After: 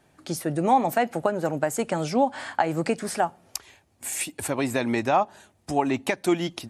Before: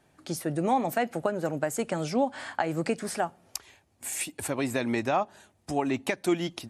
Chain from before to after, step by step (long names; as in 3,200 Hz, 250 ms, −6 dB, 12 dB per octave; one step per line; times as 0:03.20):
dynamic equaliser 870 Hz, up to +4 dB, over −39 dBFS, Q 2.4
level +3 dB